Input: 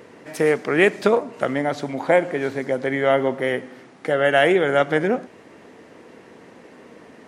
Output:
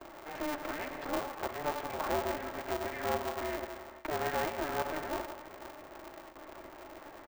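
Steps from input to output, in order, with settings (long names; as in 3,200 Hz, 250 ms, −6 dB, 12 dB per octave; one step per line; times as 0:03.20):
one scale factor per block 3 bits
tilt shelving filter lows +6.5 dB, about 810 Hz
brickwall limiter −21.5 dBFS, peak gain reduction 20.5 dB
low-pass filter 1,800 Hz 12 dB per octave
comb filter 4.1 ms, depth 64%
on a send: multi-tap delay 175/499 ms −13/−16 dB
on the sum: noise gate with hold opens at −31 dBFS
inverse Chebyshev high-pass filter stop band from 170 Hz, stop band 60 dB
ring modulator with a square carrier 150 Hz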